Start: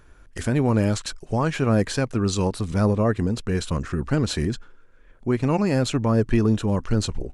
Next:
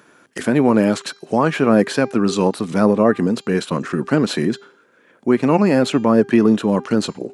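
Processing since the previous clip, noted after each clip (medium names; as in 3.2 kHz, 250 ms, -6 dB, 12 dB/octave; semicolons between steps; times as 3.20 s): dynamic bell 6.7 kHz, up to -8 dB, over -47 dBFS, Q 0.74; high-pass 180 Hz 24 dB/octave; de-hum 399.5 Hz, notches 18; trim +8 dB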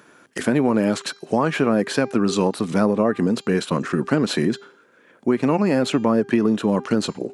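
compression, threshold -14 dBFS, peak gain reduction 6.5 dB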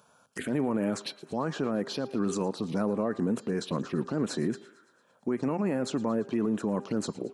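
peak limiter -13.5 dBFS, peak gain reduction 9 dB; touch-sensitive phaser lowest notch 310 Hz, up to 4.9 kHz, full sweep at -18 dBFS; thinning echo 113 ms, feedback 66%, high-pass 360 Hz, level -20 dB; trim -6 dB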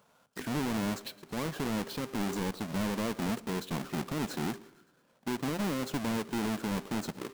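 square wave that keeps the level; on a send at -23 dB: reverberation RT60 1.5 s, pre-delay 4 ms; on the sum: trim -8 dB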